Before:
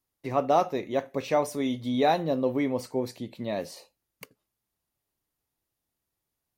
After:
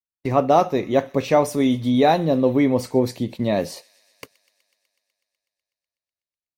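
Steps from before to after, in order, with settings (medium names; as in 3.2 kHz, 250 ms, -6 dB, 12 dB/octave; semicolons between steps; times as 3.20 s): gate -45 dBFS, range -33 dB; in parallel at +1 dB: gain riding within 3 dB 0.5 s; on the sum: bass shelf 270 Hz +6 dB; feedback echo behind a high-pass 124 ms, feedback 77%, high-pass 2.1 kHz, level -22 dB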